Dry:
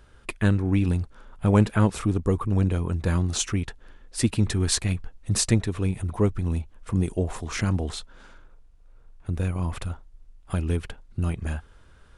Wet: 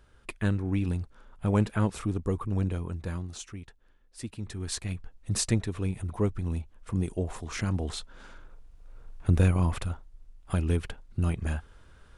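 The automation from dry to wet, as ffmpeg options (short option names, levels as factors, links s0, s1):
-af "volume=5.96,afade=t=out:st=2.66:d=0.75:silence=0.334965,afade=t=in:st=4.4:d=0.9:silence=0.298538,afade=t=in:st=7.7:d=1.6:silence=0.281838,afade=t=out:st=9.3:d=0.53:silence=0.446684"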